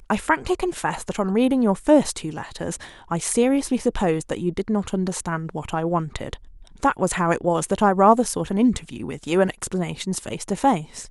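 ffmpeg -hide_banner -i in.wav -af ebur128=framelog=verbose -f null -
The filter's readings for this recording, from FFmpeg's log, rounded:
Integrated loudness:
  I:         -22.4 LUFS
  Threshold: -32.6 LUFS
Loudness range:
  LRA:         4.2 LU
  Threshold: -42.5 LUFS
  LRA low:   -25.1 LUFS
  LRA high:  -20.9 LUFS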